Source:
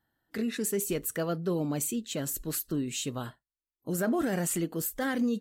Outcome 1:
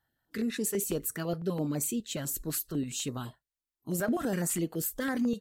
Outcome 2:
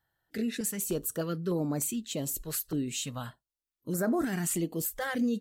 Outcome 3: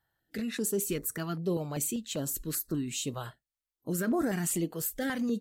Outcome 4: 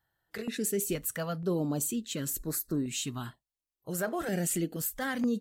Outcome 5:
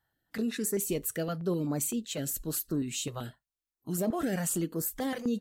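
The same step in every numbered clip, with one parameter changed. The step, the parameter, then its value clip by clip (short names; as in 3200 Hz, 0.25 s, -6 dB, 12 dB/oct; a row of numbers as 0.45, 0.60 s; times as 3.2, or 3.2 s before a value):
stepped notch, rate: 12, 3.3, 5.1, 2.1, 7.8 Hz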